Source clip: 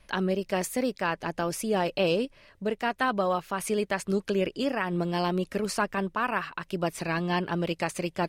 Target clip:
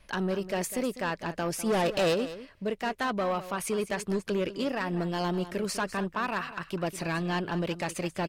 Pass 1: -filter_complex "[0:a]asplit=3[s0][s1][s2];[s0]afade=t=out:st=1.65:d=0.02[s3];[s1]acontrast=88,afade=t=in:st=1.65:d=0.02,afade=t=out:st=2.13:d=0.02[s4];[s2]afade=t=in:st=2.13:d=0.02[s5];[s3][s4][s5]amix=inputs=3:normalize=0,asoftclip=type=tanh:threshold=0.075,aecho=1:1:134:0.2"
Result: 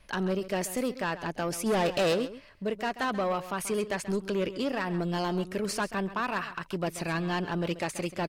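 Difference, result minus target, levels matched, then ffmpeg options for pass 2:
echo 66 ms early
-filter_complex "[0:a]asplit=3[s0][s1][s2];[s0]afade=t=out:st=1.65:d=0.02[s3];[s1]acontrast=88,afade=t=in:st=1.65:d=0.02,afade=t=out:st=2.13:d=0.02[s4];[s2]afade=t=in:st=2.13:d=0.02[s5];[s3][s4][s5]amix=inputs=3:normalize=0,asoftclip=type=tanh:threshold=0.075,aecho=1:1:200:0.2"

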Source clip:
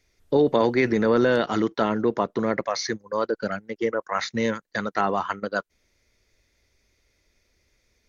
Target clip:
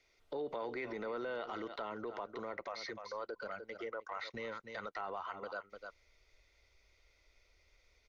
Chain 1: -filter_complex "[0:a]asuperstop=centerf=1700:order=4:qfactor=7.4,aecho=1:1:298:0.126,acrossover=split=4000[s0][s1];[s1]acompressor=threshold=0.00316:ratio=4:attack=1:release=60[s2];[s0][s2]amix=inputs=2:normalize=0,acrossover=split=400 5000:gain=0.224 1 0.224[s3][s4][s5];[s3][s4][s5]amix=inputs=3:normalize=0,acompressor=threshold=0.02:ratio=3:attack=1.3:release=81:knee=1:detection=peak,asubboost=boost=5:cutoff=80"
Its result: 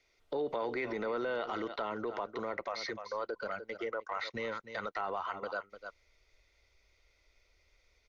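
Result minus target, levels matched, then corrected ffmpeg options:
compression: peak gain reduction -5.5 dB
-filter_complex "[0:a]asuperstop=centerf=1700:order=4:qfactor=7.4,aecho=1:1:298:0.126,acrossover=split=4000[s0][s1];[s1]acompressor=threshold=0.00316:ratio=4:attack=1:release=60[s2];[s0][s2]amix=inputs=2:normalize=0,acrossover=split=400 5000:gain=0.224 1 0.224[s3][s4][s5];[s3][s4][s5]amix=inputs=3:normalize=0,acompressor=threshold=0.00794:ratio=3:attack=1.3:release=81:knee=1:detection=peak,asubboost=boost=5:cutoff=80"

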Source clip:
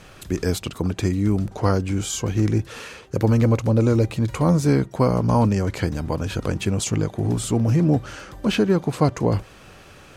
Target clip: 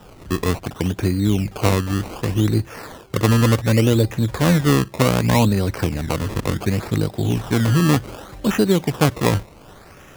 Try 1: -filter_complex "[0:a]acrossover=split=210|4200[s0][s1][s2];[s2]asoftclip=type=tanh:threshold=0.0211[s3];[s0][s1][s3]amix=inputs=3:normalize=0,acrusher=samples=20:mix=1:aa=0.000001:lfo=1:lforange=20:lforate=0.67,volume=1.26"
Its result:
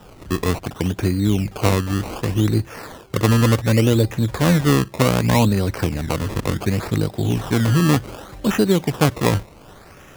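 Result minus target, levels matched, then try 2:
saturation: distortion -5 dB
-filter_complex "[0:a]acrossover=split=210|4200[s0][s1][s2];[s2]asoftclip=type=tanh:threshold=0.0075[s3];[s0][s1][s3]amix=inputs=3:normalize=0,acrusher=samples=20:mix=1:aa=0.000001:lfo=1:lforange=20:lforate=0.67,volume=1.26"

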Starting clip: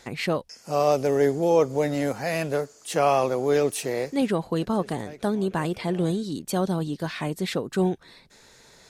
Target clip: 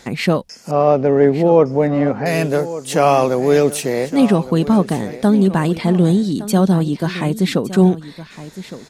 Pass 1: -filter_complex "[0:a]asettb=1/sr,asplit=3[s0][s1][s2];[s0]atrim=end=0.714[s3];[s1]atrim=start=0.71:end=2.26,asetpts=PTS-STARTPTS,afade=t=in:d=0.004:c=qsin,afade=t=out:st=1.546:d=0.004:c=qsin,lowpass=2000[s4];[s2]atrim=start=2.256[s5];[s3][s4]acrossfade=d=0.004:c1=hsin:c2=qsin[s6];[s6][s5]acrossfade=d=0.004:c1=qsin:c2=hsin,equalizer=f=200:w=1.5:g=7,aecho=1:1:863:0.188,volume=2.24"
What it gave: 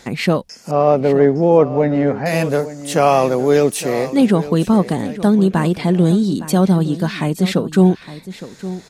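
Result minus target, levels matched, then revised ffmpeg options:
echo 300 ms early
-filter_complex "[0:a]asettb=1/sr,asplit=3[s0][s1][s2];[s0]atrim=end=0.714[s3];[s1]atrim=start=0.71:end=2.26,asetpts=PTS-STARTPTS,afade=t=in:d=0.004:c=qsin,afade=t=out:st=1.546:d=0.004:c=qsin,lowpass=2000[s4];[s2]atrim=start=2.256[s5];[s3][s4]acrossfade=d=0.004:c1=hsin:c2=qsin[s6];[s6][s5]acrossfade=d=0.004:c1=qsin:c2=hsin,equalizer=f=200:w=1.5:g=7,aecho=1:1:1163:0.188,volume=2.24"

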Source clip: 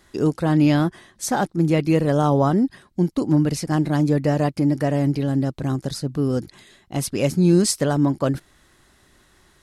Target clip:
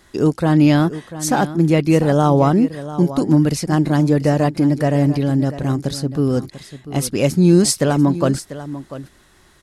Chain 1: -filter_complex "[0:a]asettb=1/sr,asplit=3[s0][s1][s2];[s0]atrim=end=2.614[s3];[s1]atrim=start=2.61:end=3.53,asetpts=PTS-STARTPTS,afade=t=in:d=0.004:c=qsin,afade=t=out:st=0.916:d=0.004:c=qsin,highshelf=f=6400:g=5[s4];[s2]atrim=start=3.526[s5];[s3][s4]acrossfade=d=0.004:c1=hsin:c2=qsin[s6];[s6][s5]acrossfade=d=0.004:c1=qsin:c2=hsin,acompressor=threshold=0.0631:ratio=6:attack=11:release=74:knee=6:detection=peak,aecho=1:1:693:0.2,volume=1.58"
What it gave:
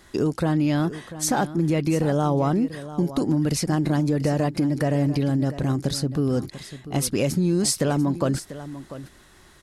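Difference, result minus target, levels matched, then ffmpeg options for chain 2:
compression: peak gain reduction +11 dB
-filter_complex "[0:a]asettb=1/sr,asplit=3[s0][s1][s2];[s0]atrim=end=2.614[s3];[s1]atrim=start=2.61:end=3.53,asetpts=PTS-STARTPTS,afade=t=in:d=0.004:c=qsin,afade=t=out:st=0.916:d=0.004:c=qsin,highshelf=f=6400:g=5[s4];[s2]atrim=start=3.526[s5];[s3][s4]acrossfade=d=0.004:c1=hsin:c2=qsin[s6];[s6][s5]acrossfade=d=0.004:c1=qsin:c2=hsin,aecho=1:1:693:0.2,volume=1.58"

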